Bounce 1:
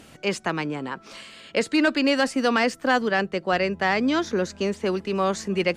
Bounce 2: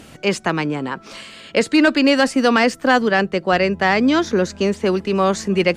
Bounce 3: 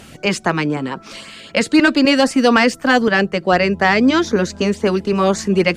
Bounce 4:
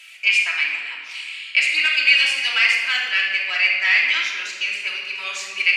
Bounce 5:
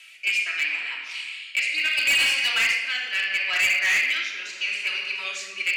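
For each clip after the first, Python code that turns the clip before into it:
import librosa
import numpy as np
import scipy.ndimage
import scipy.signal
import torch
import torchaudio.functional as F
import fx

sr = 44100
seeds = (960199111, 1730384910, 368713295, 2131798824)

y1 = fx.low_shelf(x, sr, hz=320.0, db=2.5)
y1 = y1 * librosa.db_to_amplitude(5.5)
y2 = fx.filter_lfo_notch(y1, sr, shape='saw_up', hz=3.9, low_hz=270.0, high_hz=4200.0, q=1.8)
y2 = y2 * librosa.db_to_amplitude(3.0)
y3 = fx.highpass_res(y2, sr, hz=2400.0, q=5.1)
y3 = fx.room_shoebox(y3, sr, seeds[0], volume_m3=1900.0, walls='mixed', distance_m=2.9)
y3 = y3 * librosa.db_to_amplitude(-8.5)
y4 = fx.rotary(y3, sr, hz=0.75)
y4 = np.clip(y4, -10.0 ** (-17.0 / 20.0), 10.0 ** (-17.0 / 20.0))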